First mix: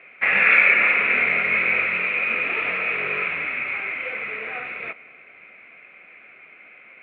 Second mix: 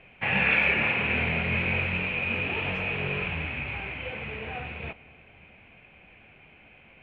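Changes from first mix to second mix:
background -4.0 dB; master: remove cabinet simulation 370–4800 Hz, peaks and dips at 860 Hz -9 dB, 1.3 kHz +9 dB, 2.1 kHz +10 dB, 3.1 kHz -9 dB

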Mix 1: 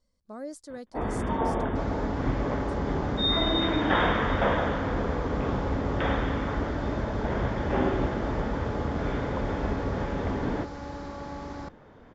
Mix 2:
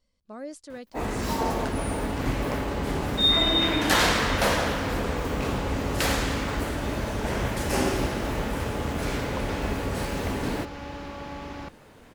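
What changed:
first sound: remove brick-wall FIR low-pass 3.7 kHz; master: add peaking EQ 2.7 kHz +12 dB 0.72 oct

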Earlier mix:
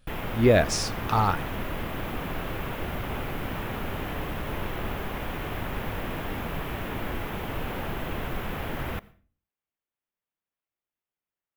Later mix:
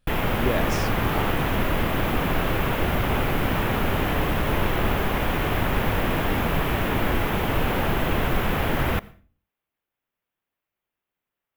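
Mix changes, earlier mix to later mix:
speech -8.0 dB; background +9.0 dB

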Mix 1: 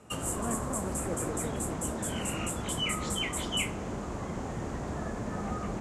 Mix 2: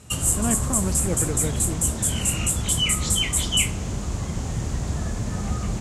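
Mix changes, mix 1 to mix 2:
speech +7.5 dB; master: remove three-band isolator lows -14 dB, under 220 Hz, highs -14 dB, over 2 kHz

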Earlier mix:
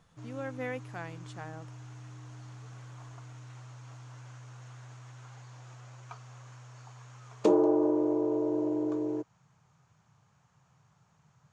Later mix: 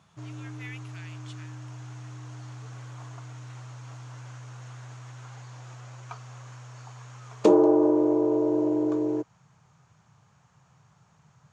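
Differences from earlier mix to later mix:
speech: add resonant high-pass 2.7 kHz, resonance Q 2; background +5.5 dB

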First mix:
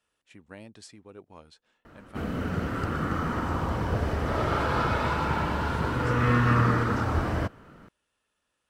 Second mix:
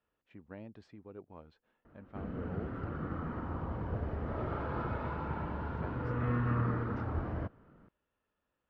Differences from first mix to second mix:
background -8.0 dB; master: add tape spacing loss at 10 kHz 42 dB

